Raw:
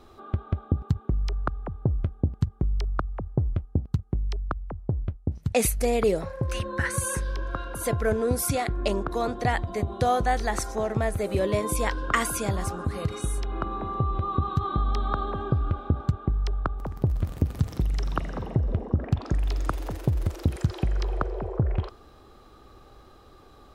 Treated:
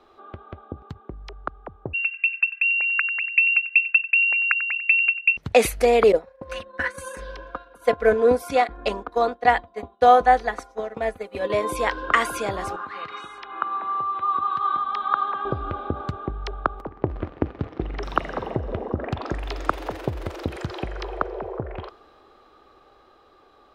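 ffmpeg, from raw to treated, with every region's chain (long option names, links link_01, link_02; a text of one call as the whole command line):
ffmpeg -i in.wav -filter_complex "[0:a]asettb=1/sr,asplit=3[link_01][link_02][link_03];[link_01]atrim=end=1.934[link_04];[link_02]atrim=start=1.93:end=5.37,asetpts=PTS-STARTPTS,afade=type=in:duration=0.004:curve=qsin,afade=type=out:start_time=3.436:duration=0.004:curve=qsin,lowpass=frequency=2400:width_type=q:width=0.5098,lowpass=frequency=2400:width_type=q:width=0.6013,lowpass=frequency=2400:width_type=q:width=0.9,lowpass=frequency=2400:width_type=q:width=2.563,afreqshift=-2800,aecho=1:1:94:0.168,atrim=end_sample=151704[link_05];[link_03]atrim=start=5.366[link_06];[link_04][link_05]acrossfade=duration=0.004:curve1=hsin:curve2=qsin[link_07];[link_07][link_06]acrossfade=duration=0.004:curve1=qsin:curve2=hsin,asettb=1/sr,asplit=3[link_08][link_09][link_10];[link_08]atrim=end=6.124[link_11];[link_09]atrim=start=6.12:end=11.5,asetpts=PTS-STARTPTS,afade=type=in:duration=0.004:curve=qsin,afade=type=out:start_time=5.376:duration=0.004:curve=qsin,aecho=1:1:4.1:0.67,atrim=end_sample=237258,agate=range=-33dB:threshold=-20dB:ratio=3:release=100:detection=peak,adynamicequalizer=threshold=0.0141:dfrequency=1500:dqfactor=0.7:tfrequency=1500:tqfactor=0.7:attack=5:release=100:ratio=0.375:range=2:mode=cutabove:tftype=highshelf[link_12];[link_10]atrim=start=11.496[link_13];[link_11][link_12]acrossfade=duration=0.004:curve1=hsin:curve2=qsin[link_14];[link_14][link_13]acrossfade=duration=0.004:curve1=qsin:curve2=hsin,asettb=1/sr,asplit=3[link_15][link_16][link_17];[link_15]atrim=end=12.764[link_18];[link_16]atrim=start=12.76:end=15.45,asetpts=PTS-STARTPTS,afade=type=in:duration=0.004:curve=qsin,afade=type=out:start_time=2.686:duration=0.004:curve=qsin,highpass=170,lowpass=3900,lowshelf=frequency=770:width_type=q:width=1.5:gain=-10[link_19];[link_17]atrim=start=15.446[link_20];[link_18][link_19]acrossfade=duration=0.004:curve1=hsin:curve2=qsin[link_21];[link_21][link_20]acrossfade=duration=0.004:curve1=qsin:curve2=hsin,asettb=1/sr,asplit=3[link_22][link_23][link_24];[link_22]atrim=end=16.814[link_25];[link_23]atrim=start=16.81:end=18.03,asetpts=PTS-STARTPTS,afade=type=in:duration=0.004:curve=qsin,afade=type=out:start_time=1.216:duration=0.004:curve=qsin,agate=range=-7dB:threshold=-31dB:ratio=16:release=100:detection=peak,lowpass=2500,equalizer=frequency=320:width_type=o:width=0.74:gain=6.5[link_26];[link_24]atrim=start=18.026[link_27];[link_25][link_26]acrossfade=duration=0.004:curve1=hsin:curve2=qsin[link_28];[link_28][link_27]acrossfade=duration=0.004:curve1=qsin:curve2=hsin,acrossover=split=320 4300:gain=0.178 1 0.224[link_29][link_30][link_31];[link_29][link_30][link_31]amix=inputs=3:normalize=0,dynaudnorm=framelen=300:gausssize=21:maxgain=11.5dB" out.wav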